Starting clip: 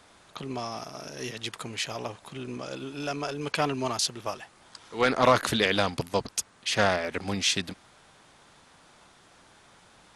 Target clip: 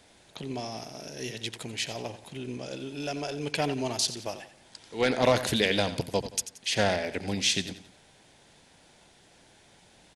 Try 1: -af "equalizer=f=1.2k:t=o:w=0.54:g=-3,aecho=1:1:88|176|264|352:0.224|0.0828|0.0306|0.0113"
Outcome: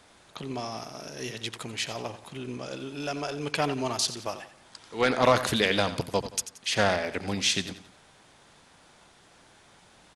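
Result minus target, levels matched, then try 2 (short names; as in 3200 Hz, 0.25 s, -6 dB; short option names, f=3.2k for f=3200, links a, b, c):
1000 Hz band +3.0 dB
-af "equalizer=f=1.2k:t=o:w=0.54:g=-13.5,aecho=1:1:88|176|264|352:0.224|0.0828|0.0306|0.0113"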